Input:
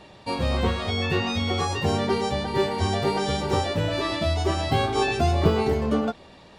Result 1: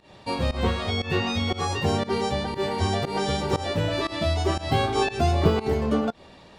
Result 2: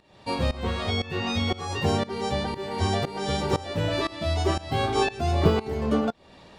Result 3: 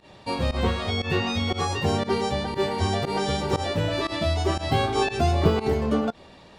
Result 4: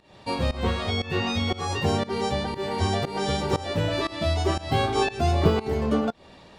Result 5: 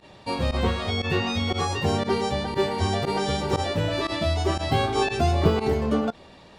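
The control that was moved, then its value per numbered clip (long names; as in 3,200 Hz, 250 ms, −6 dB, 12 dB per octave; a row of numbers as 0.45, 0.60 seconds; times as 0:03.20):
fake sidechain pumping, release: 161, 420, 106, 259, 65 milliseconds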